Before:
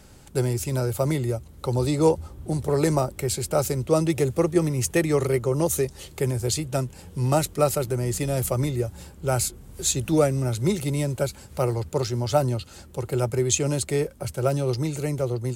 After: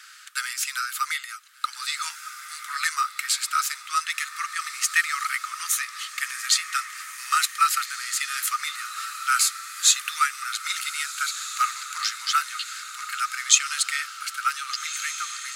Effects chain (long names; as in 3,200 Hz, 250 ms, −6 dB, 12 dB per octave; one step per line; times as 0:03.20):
high-shelf EQ 3,700 Hz −11.5 dB
in parallel at +2.5 dB: speech leveller 2 s
on the sum: Chebyshev high-pass with heavy ripple 1,200 Hz, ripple 3 dB
on a send: feedback delay with all-pass diffusion 1,610 ms, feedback 47%, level −11 dB
on the sum: level +7.5 dB